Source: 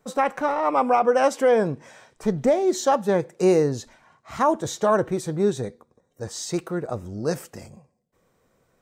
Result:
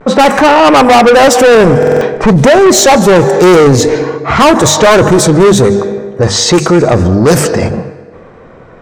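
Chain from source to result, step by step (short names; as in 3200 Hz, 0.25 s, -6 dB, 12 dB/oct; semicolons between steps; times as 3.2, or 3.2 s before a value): vibrato 0.53 Hz 36 cents; notches 50/100/150/200/250 Hz; reverb RT60 1.5 s, pre-delay 0.144 s, DRR 17.5 dB; low-pass opened by the level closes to 2000 Hz, open at -20.5 dBFS; soft clip -27 dBFS, distortion -5 dB; maximiser +32 dB; stuck buffer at 1.78, samples 2048, times 4; gain -1 dB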